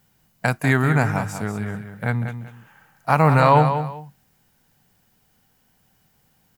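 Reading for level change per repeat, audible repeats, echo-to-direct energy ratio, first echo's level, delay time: -12.0 dB, 2, -8.5 dB, -9.0 dB, 192 ms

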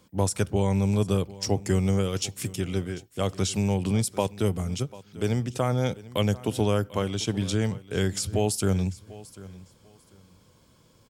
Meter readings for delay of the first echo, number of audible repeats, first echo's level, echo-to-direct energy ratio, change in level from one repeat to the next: 744 ms, 2, -19.0 dB, -19.0 dB, -13.0 dB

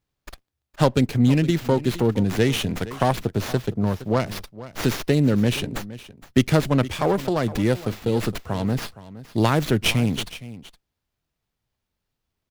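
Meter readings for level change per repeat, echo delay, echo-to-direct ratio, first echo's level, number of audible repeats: no regular repeats, 466 ms, -16.5 dB, -16.5 dB, 1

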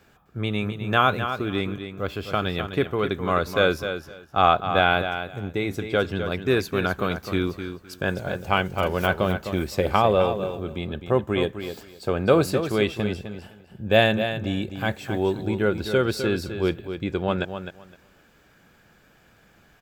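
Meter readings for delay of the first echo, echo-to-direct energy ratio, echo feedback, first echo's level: 257 ms, -9.0 dB, 18%, -9.0 dB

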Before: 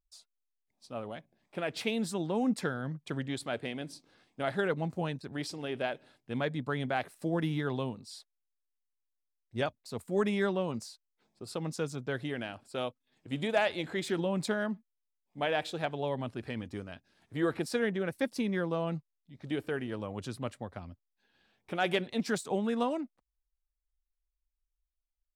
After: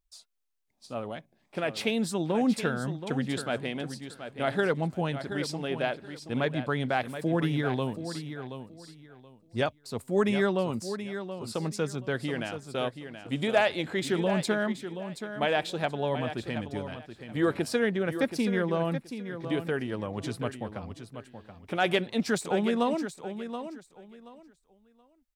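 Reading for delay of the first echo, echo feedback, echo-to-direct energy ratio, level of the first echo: 727 ms, 22%, -10.0 dB, -10.0 dB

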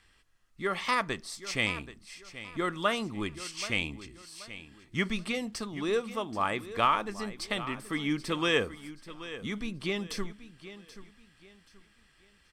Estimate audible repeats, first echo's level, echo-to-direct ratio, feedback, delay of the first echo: 3, -14.5 dB, -14.0 dB, 32%, 780 ms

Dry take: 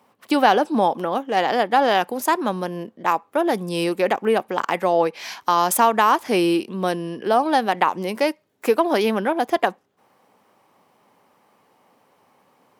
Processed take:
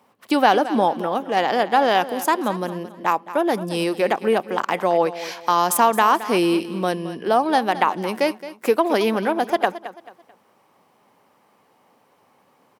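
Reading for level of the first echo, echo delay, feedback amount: -14.5 dB, 219 ms, 34%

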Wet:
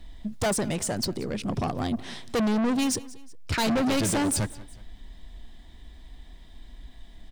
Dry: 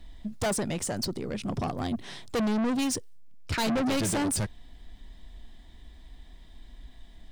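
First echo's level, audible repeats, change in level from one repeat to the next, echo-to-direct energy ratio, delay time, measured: -20.0 dB, 2, -6.5 dB, -19.0 dB, 184 ms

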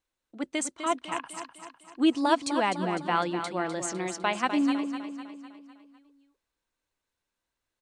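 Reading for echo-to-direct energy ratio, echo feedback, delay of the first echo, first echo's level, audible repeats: -7.5 dB, 51%, 252 ms, -9.0 dB, 5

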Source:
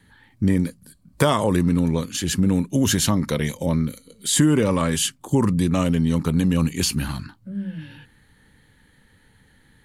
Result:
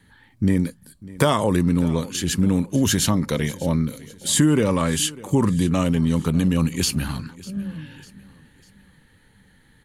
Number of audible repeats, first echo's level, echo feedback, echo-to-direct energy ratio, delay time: 3, -20.0 dB, 44%, -19.0 dB, 598 ms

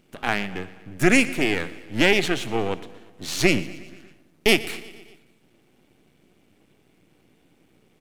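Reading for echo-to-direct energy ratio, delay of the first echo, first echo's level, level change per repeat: -17.0 dB, 119 ms, -19.0 dB, -4.5 dB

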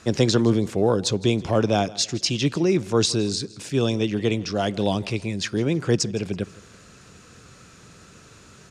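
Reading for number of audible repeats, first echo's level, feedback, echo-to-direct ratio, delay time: 2, -21.0 dB, 37%, -20.5 dB, 163 ms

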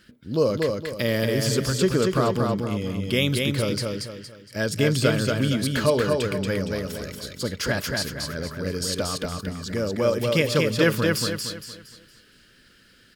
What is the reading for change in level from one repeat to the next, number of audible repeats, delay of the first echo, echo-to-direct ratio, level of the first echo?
-8.5 dB, 4, 232 ms, -3.0 dB, -3.5 dB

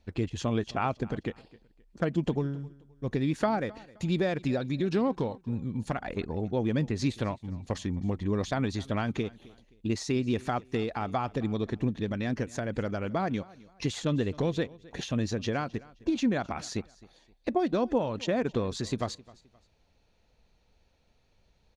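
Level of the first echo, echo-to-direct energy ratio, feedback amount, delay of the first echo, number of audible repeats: -22.0 dB, -21.5 dB, 32%, 262 ms, 2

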